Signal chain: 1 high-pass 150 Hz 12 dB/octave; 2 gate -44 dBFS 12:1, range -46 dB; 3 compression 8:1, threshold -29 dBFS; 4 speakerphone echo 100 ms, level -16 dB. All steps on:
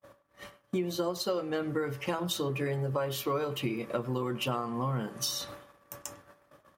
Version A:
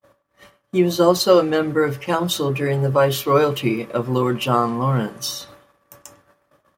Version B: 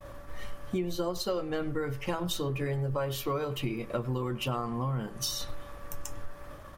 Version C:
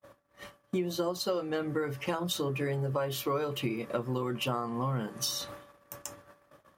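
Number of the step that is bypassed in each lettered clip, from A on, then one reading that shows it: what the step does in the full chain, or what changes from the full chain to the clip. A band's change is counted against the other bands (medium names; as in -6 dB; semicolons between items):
3, mean gain reduction 10.5 dB; 1, 125 Hz band +3.0 dB; 4, echo-to-direct -19.0 dB to none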